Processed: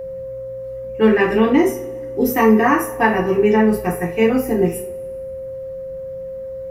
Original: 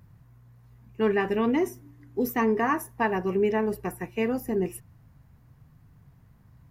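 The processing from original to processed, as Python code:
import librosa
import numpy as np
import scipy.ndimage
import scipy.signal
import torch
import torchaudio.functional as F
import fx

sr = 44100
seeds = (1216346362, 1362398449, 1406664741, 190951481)

y = fx.rev_double_slope(x, sr, seeds[0], early_s=0.33, late_s=1.6, knee_db=-22, drr_db=-3.0)
y = y + 10.0 ** (-32.0 / 20.0) * np.sin(2.0 * np.pi * 530.0 * np.arange(len(y)) / sr)
y = y * 10.0 ** (5.5 / 20.0)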